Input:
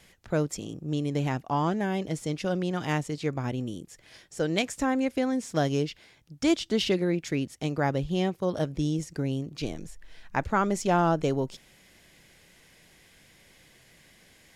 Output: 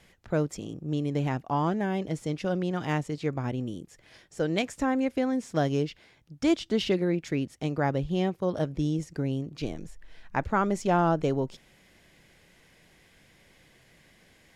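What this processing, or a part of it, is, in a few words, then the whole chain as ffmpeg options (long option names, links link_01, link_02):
behind a face mask: -af "highshelf=frequency=3500:gain=-7"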